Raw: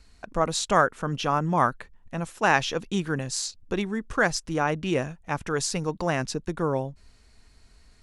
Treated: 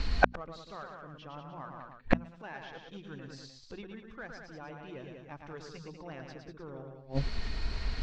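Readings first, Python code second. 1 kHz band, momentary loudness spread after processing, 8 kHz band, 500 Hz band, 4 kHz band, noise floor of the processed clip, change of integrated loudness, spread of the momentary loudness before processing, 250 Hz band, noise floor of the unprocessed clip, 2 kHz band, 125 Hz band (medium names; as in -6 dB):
-13.0 dB, 14 LU, -26.5 dB, -12.0 dB, -13.0 dB, -54 dBFS, -13.0 dB, 10 LU, -11.0 dB, -57 dBFS, -10.0 dB, -9.5 dB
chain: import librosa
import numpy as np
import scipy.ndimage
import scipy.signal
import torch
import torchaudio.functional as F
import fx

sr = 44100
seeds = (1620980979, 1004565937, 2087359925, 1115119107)

p1 = fx.spec_quant(x, sr, step_db=15)
p2 = fx.low_shelf(p1, sr, hz=62.0, db=4.0)
p3 = np.clip(p2, -10.0 ** (-22.5 / 20.0), 10.0 ** (-22.5 / 20.0))
p4 = p2 + F.gain(torch.from_numpy(p3), -9.0).numpy()
p5 = scipy.signal.sosfilt(scipy.signal.butter(4, 4700.0, 'lowpass', fs=sr, output='sos'), p4)
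p6 = p5 + 10.0 ** (-7.0 / 20.0) * np.pad(p5, (int(192 * sr / 1000.0), 0))[:len(p5)]
p7 = fx.rider(p6, sr, range_db=5, speed_s=0.5)
p8 = p7 + fx.echo_single(p7, sr, ms=111, db=-5.0, dry=0)
p9 = fx.gate_flip(p8, sr, shuts_db=-23.0, range_db=-38)
p10 = fx.hum_notches(p9, sr, base_hz=60, count=4)
y = F.gain(torch.from_numpy(p10), 15.5).numpy()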